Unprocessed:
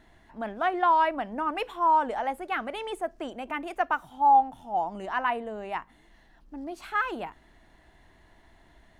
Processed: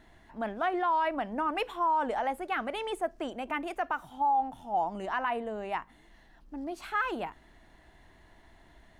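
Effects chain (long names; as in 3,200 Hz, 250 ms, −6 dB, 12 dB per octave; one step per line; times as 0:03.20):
brickwall limiter −21 dBFS, peak gain reduction 9 dB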